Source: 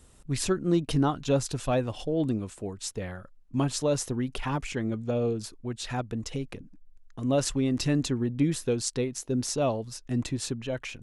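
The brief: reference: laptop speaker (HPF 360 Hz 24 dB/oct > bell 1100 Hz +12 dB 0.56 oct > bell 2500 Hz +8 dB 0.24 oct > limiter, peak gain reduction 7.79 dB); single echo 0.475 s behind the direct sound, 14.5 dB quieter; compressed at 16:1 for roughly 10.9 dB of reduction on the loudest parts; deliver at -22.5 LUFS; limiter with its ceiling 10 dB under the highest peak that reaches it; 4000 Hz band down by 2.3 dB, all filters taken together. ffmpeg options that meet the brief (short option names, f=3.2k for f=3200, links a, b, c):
-af "equalizer=f=4k:t=o:g=-4,acompressor=threshold=-30dB:ratio=16,alimiter=level_in=3dB:limit=-24dB:level=0:latency=1,volume=-3dB,highpass=f=360:w=0.5412,highpass=f=360:w=1.3066,equalizer=f=1.1k:t=o:w=0.56:g=12,equalizer=f=2.5k:t=o:w=0.24:g=8,aecho=1:1:475:0.188,volume=18dB,alimiter=limit=-11dB:level=0:latency=1"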